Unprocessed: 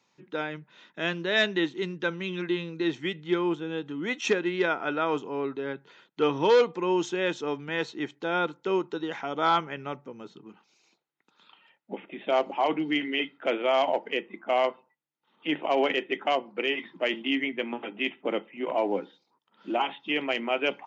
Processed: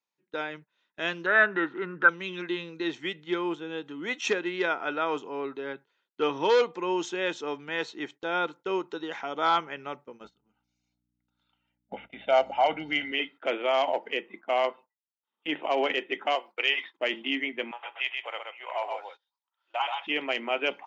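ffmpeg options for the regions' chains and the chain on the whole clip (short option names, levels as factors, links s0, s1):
-filter_complex "[0:a]asettb=1/sr,asplit=3[s0][s1][s2];[s0]atrim=end=1.264[s3];[s1]atrim=start=1.26:end=2.09,asetpts=PTS-STARTPTS,afade=t=in:d=0.004:c=qsin,afade=t=out:st=0.826:d=0.004:c=qsin,lowpass=f=1400:t=q:w=9.4,acompressor=mode=upward:threshold=0.0501:ratio=2.5:attack=3.2:release=140:knee=2.83:detection=peak[s4];[s2]atrim=start=2.086[s5];[s3][s4]acrossfade=d=0.004:c1=hsin:c2=qsin[s6];[s6][s5]acrossfade=d=0.004:c1=qsin:c2=hsin,asettb=1/sr,asplit=3[s7][s8][s9];[s7]atrim=end=10.244[s10];[s8]atrim=start=10.24:end=13.12,asetpts=PTS-STARTPTS,afade=t=in:d=0.004:c=qsin,afade=t=out:st=2.876:d=0.004:c=qsin,lowshelf=f=170:g=4.5,aecho=1:1:1.4:0.69,atrim=end_sample=127008,aeval=exprs='val(0)+0.00398*(sin(2*PI*60*n/s)+sin(2*PI*2*60*n/s)/2+sin(2*PI*3*60*n/s)/3+sin(2*PI*4*60*n/s)/4+sin(2*PI*5*60*n/s)/5)':c=same[s11];[s9]atrim=start=13.116[s12];[s10][s11]acrossfade=d=0.004:c1=hsin:c2=qsin[s13];[s13][s12]acrossfade=d=0.004:c1=qsin:c2=hsin,asettb=1/sr,asplit=3[s14][s15][s16];[s14]atrim=end=16.354[s17];[s15]atrim=start=16.35:end=16.99,asetpts=PTS-STARTPTS,afade=t=in:d=0.004:c=qsin,afade=t=out:st=0.636:d=0.004:c=qsin,agate=range=0.0224:threshold=0.00501:ratio=3:release=100:detection=peak,highpass=550,highshelf=f=2000:g=7.5[s18];[s16]atrim=start=16.986[s19];[s17][s18]acrossfade=d=0.004:c1=hsin:c2=qsin[s20];[s20][s19]acrossfade=d=0.004:c1=qsin:c2=hsin,asettb=1/sr,asplit=3[s21][s22][s23];[s21]atrim=end=17.714[s24];[s22]atrim=start=17.71:end=20.07,asetpts=PTS-STARTPTS,afade=t=in:d=0.004:c=qsin,afade=t=out:st=2.356:d=0.004:c=qsin,highpass=f=700:w=0.5412,highpass=f=700:w=1.3066,aecho=1:1:127:0.596,atrim=end_sample=104076[s25];[s23]atrim=start=20.066[s26];[s24][s25]acrossfade=d=0.004:c1=hsin:c2=qsin[s27];[s27][s26]acrossfade=d=0.004:c1=qsin:c2=hsin,highpass=f=400:p=1,agate=range=0.1:threshold=0.00501:ratio=16:detection=peak"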